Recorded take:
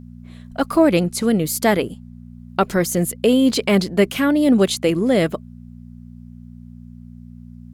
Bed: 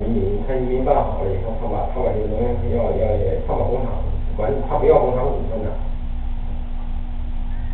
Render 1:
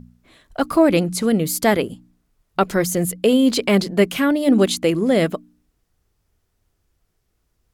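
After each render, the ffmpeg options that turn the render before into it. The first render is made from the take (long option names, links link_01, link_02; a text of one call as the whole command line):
ffmpeg -i in.wav -af "bandreject=frequency=60:width_type=h:width=4,bandreject=frequency=120:width_type=h:width=4,bandreject=frequency=180:width_type=h:width=4,bandreject=frequency=240:width_type=h:width=4,bandreject=frequency=300:width_type=h:width=4" out.wav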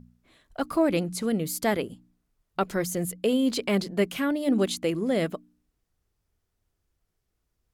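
ffmpeg -i in.wav -af "volume=-8.5dB" out.wav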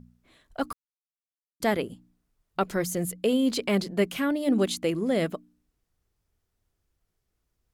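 ffmpeg -i in.wav -filter_complex "[0:a]asplit=3[link_01][link_02][link_03];[link_01]atrim=end=0.73,asetpts=PTS-STARTPTS,afade=type=out:start_time=0.726:duration=0.004:curve=hsin[link_04];[link_02]atrim=start=0.73:end=1.6,asetpts=PTS-STARTPTS,volume=0[link_05];[link_03]atrim=start=1.6,asetpts=PTS-STARTPTS,afade=type=in:duration=0.004:curve=hsin[link_06];[link_04][link_05][link_06]concat=n=3:v=0:a=1" out.wav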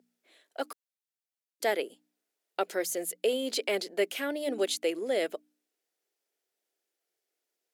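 ffmpeg -i in.wav -af "highpass=frequency=380:width=0.5412,highpass=frequency=380:width=1.3066,equalizer=frequency=1100:width_type=o:width=0.62:gain=-10" out.wav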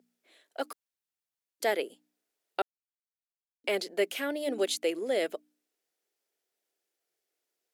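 ffmpeg -i in.wav -filter_complex "[0:a]asplit=3[link_01][link_02][link_03];[link_01]atrim=end=2.62,asetpts=PTS-STARTPTS,afade=type=out:start_time=2.616:duration=0.004:curve=hsin[link_04];[link_02]atrim=start=2.62:end=3.64,asetpts=PTS-STARTPTS,volume=0[link_05];[link_03]atrim=start=3.64,asetpts=PTS-STARTPTS,afade=type=in:duration=0.004:curve=hsin[link_06];[link_04][link_05][link_06]concat=n=3:v=0:a=1" out.wav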